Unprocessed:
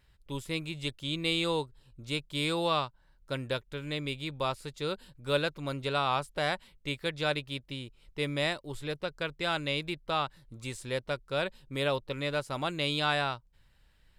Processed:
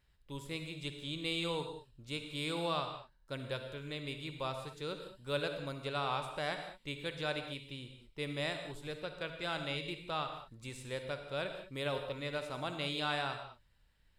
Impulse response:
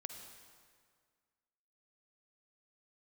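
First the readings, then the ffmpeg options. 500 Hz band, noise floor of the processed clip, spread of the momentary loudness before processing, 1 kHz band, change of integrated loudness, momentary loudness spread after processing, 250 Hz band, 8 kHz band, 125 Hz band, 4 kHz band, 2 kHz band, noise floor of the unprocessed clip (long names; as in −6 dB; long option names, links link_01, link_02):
−6.0 dB, −69 dBFS, 10 LU, −6.5 dB, −6.5 dB, 10 LU, −6.5 dB, −6.5 dB, −6.5 dB, −6.5 dB, −6.5 dB, −65 dBFS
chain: -filter_complex "[1:a]atrim=start_sample=2205,afade=type=out:start_time=0.27:duration=0.01,atrim=end_sample=12348[link_01];[0:a][link_01]afir=irnorm=-1:irlink=0,volume=-3dB"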